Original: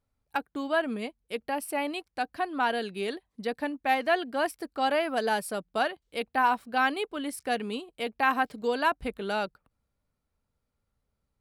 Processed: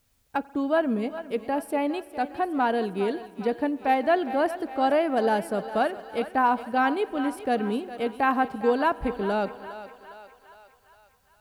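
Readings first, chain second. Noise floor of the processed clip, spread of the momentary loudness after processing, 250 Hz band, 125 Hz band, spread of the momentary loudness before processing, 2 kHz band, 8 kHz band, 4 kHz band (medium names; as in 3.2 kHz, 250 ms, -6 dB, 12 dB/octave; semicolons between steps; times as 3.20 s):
-63 dBFS, 8 LU, +7.0 dB, no reading, 9 LU, -1.0 dB, -5.5 dB, -4.0 dB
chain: tilt shelf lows +7 dB, about 1.1 kHz; on a send: thinning echo 408 ms, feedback 58%, high-pass 470 Hz, level -12 dB; on the sum: spring tank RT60 2.2 s, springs 44 ms, chirp 55 ms, DRR 19 dB; word length cut 12-bit, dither triangular; trim +1 dB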